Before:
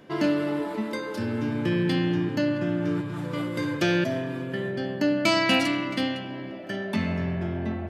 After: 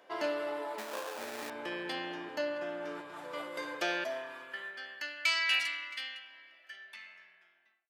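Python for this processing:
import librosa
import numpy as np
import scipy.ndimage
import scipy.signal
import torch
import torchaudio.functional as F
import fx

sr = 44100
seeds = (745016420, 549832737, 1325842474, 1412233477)

y = fx.fade_out_tail(x, sr, length_s=2.57)
y = fx.sample_hold(y, sr, seeds[0], rate_hz=2100.0, jitter_pct=20, at=(0.78, 1.5))
y = fx.filter_sweep_highpass(y, sr, from_hz=660.0, to_hz=1900.0, start_s=3.87, end_s=5.16, q=1.5)
y = y * 10.0 ** (-6.5 / 20.0)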